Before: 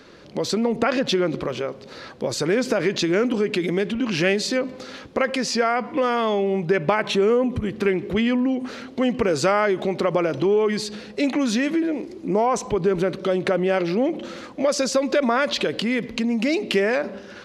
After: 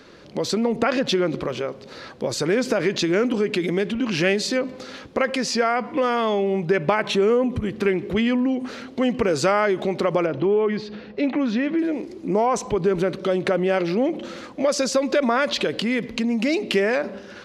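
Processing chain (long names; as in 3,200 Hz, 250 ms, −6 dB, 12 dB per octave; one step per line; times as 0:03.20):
0:10.26–0:11.79: high-frequency loss of the air 270 metres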